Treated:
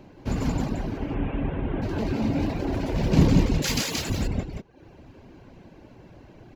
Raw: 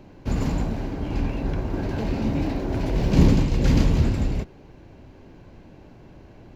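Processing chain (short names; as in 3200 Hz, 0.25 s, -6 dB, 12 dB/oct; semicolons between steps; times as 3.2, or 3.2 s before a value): 0.97–1.82 delta modulation 16 kbps, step -40.5 dBFS; 3.62–4.1 tilt +4.5 dB/oct; on a send: echo 0.176 s -3.5 dB; on the sum: reverb removal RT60 0.63 s; low shelf 64 Hz -6.5 dB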